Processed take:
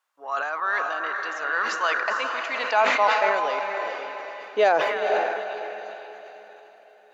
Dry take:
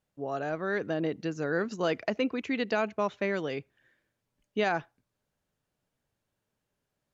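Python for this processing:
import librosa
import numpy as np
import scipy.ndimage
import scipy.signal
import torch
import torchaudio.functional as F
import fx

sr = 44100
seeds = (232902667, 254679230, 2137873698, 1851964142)

p1 = fx.echo_stepped(x, sr, ms=300, hz=1300.0, octaves=0.7, feedback_pct=70, wet_db=-9)
p2 = 10.0 ** (-25.5 / 20.0) * np.tanh(p1 / 10.0 ** (-25.5 / 20.0))
p3 = p1 + (p2 * librosa.db_to_amplitude(-11.0))
p4 = fx.peak_eq(p3, sr, hz=120.0, db=-10.5, octaves=0.6)
p5 = fx.filter_sweep_highpass(p4, sr, from_hz=1100.0, to_hz=430.0, start_s=1.86, end_s=5.43, q=3.5)
p6 = fx.echo_diffused(p5, sr, ms=461, feedback_pct=41, wet_db=-4)
p7 = fx.sustainer(p6, sr, db_per_s=36.0)
y = p7 * librosa.db_to_amplitude(2.5)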